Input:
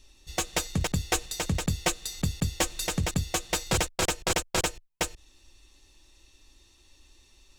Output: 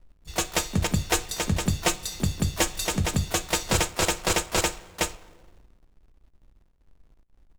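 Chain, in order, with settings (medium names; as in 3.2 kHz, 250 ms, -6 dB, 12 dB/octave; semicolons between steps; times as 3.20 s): two-slope reverb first 0.27 s, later 2.5 s, from -17 dB, DRR 9.5 dB; hysteresis with a dead band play -45.5 dBFS; harmony voices +4 st -15 dB, +12 st -16 dB; trim +2.5 dB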